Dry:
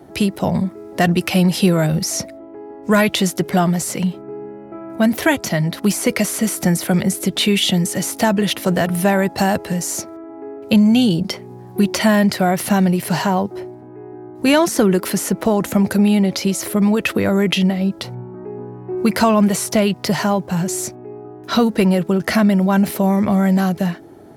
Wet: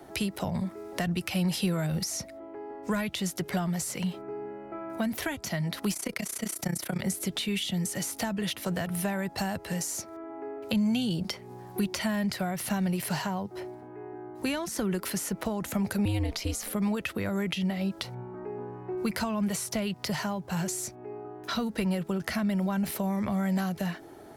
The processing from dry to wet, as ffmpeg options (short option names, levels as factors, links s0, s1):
-filter_complex "[0:a]asplit=3[s0][s1][s2];[s0]afade=t=out:st=5.93:d=0.02[s3];[s1]tremolo=f=30:d=0.919,afade=t=in:st=5.93:d=0.02,afade=t=out:st=7.01:d=0.02[s4];[s2]afade=t=in:st=7.01:d=0.02[s5];[s3][s4][s5]amix=inputs=3:normalize=0,asettb=1/sr,asplit=3[s6][s7][s8];[s6]atrim=end=16.054[s9];[s7]atrim=start=16.05:end=16.73,asetpts=PTS-STARTPTS,afade=t=in:d=0.004:c=qsin,afade=t=out:st=0.676:d=0.004:c=qsin,aeval=exprs='val(0)*sin(2*PI*110*n/s)':c=same[s10];[s8]atrim=start=16.726[s11];[s9][s10]acrossfade=d=0.004:c1=hsin:c2=qsin[s12];[s12][s11]acrossfade=d=0.004:c1=qsin:c2=hsin,equalizer=f=160:w=0.35:g=-10,acrossover=split=200[s13][s14];[s14]acompressor=threshold=0.0251:ratio=6[s15];[s13][s15]amix=inputs=2:normalize=0"